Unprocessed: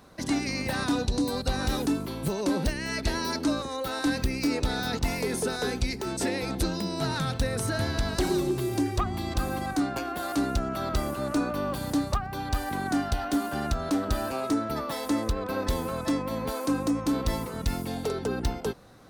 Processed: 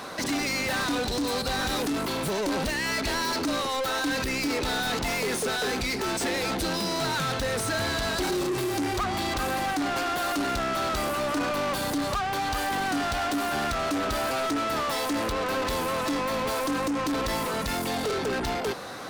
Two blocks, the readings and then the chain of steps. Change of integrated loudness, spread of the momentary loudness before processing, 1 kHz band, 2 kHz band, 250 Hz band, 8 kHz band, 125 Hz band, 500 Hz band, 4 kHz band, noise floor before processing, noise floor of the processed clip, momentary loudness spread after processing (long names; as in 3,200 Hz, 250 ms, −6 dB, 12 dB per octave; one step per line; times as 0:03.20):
+2.0 dB, 4 LU, +5.0 dB, +6.0 dB, −2.0 dB, +4.0 dB, −4.5 dB, +2.0 dB, +5.5 dB, −36 dBFS, −30 dBFS, 1 LU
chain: soft clipping −22.5 dBFS, distortion −16 dB
mid-hump overdrive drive 27 dB, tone 6,600 Hz, clips at −22.5 dBFS